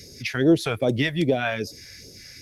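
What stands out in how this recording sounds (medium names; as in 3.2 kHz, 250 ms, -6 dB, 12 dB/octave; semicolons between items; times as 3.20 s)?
phasing stages 2, 2.5 Hz, lowest notch 290–1900 Hz; a quantiser's noise floor 12-bit, dither none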